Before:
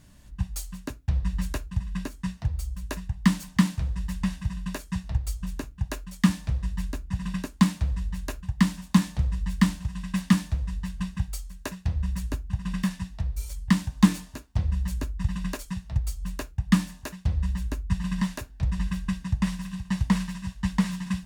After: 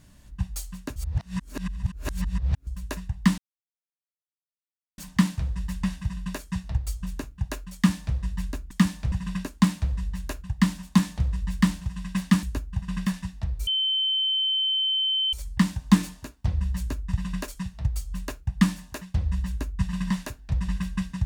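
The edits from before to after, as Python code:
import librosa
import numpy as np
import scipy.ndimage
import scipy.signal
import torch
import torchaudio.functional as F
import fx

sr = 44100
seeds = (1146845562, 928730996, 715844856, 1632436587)

y = fx.edit(x, sr, fx.reverse_span(start_s=0.96, length_s=1.71),
    fx.insert_silence(at_s=3.38, length_s=1.6),
    fx.duplicate(start_s=6.15, length_s=0.41, to_s=7.11),
    fx.cut(start_s=10.42, length_s=1.78),
    fx.insert_tone(at_s=13.44, length_s=1.66, hz=3080.0, db=-21.5), tone=tone)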